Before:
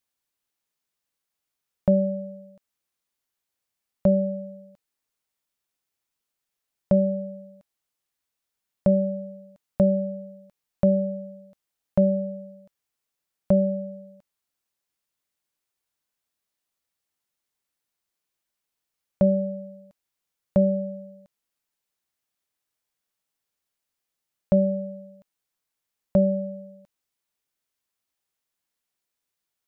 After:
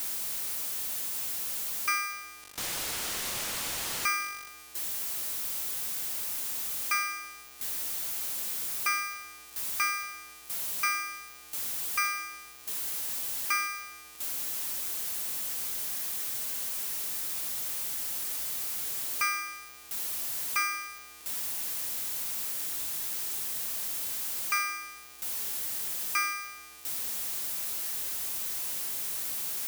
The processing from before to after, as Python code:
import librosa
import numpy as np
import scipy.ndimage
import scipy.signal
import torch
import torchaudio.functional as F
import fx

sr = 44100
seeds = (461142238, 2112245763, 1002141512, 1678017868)

y = x + 0.5 * 10.0 ** (-23.5 / 20.0) * np.diff(np.sign(x), prepend=np.sign(x[:1]))
y = scipy.signal.sosfilt(scipy.signal.butter(2, 320.0, 'highpass', fs=sr, output='sos'), y)
y = fx.resample_bad(y, sr, factor=2, down='none', up='hold', at=(2.43, 4.48))
y = y * np.sign(np.sin(2.0 * np.pi * 1800.0 * np.arange(len(y)) / sr))
y = F.gain(torch.from_numpy(y), -6.5).numpy()